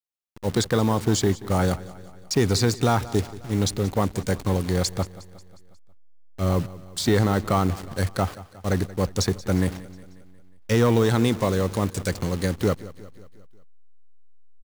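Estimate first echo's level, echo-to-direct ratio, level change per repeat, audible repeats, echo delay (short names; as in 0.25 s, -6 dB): -18.0 dB, -16.5 dB, -5.0 dB, 4, 0.18 s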